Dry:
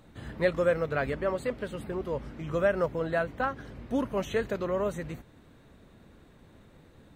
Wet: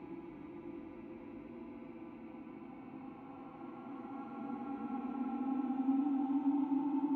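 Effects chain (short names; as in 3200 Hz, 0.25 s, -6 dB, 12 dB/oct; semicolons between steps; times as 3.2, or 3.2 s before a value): reverse delay 0.411 s, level -6 dB; compressor 3:1, threshold -32 dBFS, peak gain reduction 10 dB; vowel filter u; on a send: diffused feedback echo 0.552 s, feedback 42%, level -5 dB; on the sum: Paulstretch 30×, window 0.10 s, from 3.76; gain +3.5 dB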